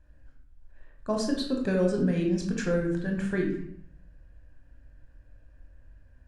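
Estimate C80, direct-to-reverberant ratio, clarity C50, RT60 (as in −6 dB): 8.5 dB, 0.5 dB, 4.5 dB, 0.65 s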